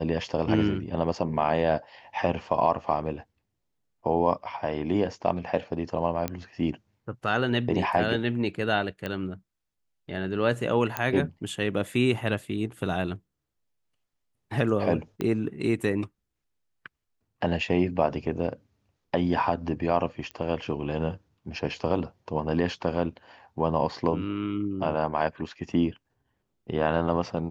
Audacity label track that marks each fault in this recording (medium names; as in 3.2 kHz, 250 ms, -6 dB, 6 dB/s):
6.280000	6.280000	pop -14 dBFS
9.060000	9.060000	pop -18 dBFS
10.970000	10.970000	pop -11 dBFS
15.210000	15.210000	pop -16 dBFS
20.310000	20.310000	pop -24 dBFS